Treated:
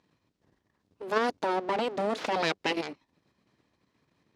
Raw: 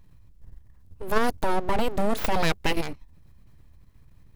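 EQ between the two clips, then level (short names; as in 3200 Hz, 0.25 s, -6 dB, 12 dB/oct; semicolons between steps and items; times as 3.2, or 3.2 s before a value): Chebyshev band-pass 300–5200 Hz, order 2; -1.5 dB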